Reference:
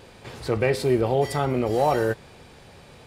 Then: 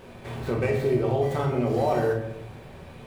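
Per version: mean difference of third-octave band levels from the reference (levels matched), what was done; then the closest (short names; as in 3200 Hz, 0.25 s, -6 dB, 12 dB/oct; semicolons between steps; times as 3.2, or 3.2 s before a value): 4.5 dB: median filter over 9 samples; compressor 2.5:1, threshold -27 dBFS, peak gain reduction 8 dB; shoebox room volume 210 m³, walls mixed, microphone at 1.1 m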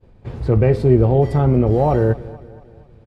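9.0 dB: expander -39 dBFS; tilt -4.5 dB/oct; on a send: feedback echo 0.234 s, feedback 51%, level -19.5 dB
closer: first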